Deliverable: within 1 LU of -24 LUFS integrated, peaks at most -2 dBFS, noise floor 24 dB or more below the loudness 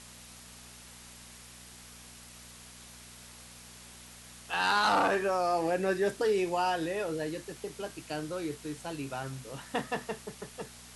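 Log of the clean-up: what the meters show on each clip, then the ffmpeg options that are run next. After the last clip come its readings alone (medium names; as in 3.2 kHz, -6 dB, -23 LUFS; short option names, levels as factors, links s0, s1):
hum 60 Hz; highest harmonic 240 Hz; hum level -56 dBFS; noise floor -51 dBFS; noise floor target -56 dBFS; loudness -31.5 LUFS; peak level -17.0 dBFS; loudness target -24.0 LUFS
-> -af "bandreject=f=60:t=h:w=4,bandreject=f=120:t=h:w=4,bandreject=f=180:t=h:w=4,bandreject=f=240:t=h:w=4"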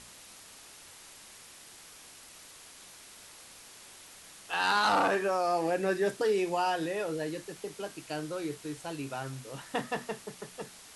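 hum not found; noise floor -52 dBFS; noise floor target -56 dBFS
-> -af "afftdn=nr=6:nf=-52"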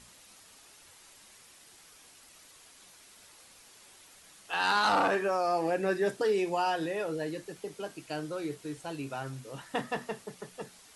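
noise floor -57 dBFS; loudness -31.5 LUFS; peak level -17.0 dBFS; loudness target -24.0 LUFS
-> -af "volume=2.37"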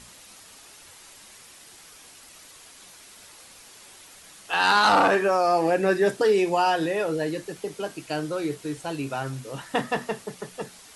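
loudness -24.0 LUFS; peak level -9.5 dBFS; noise floor -49 dBFS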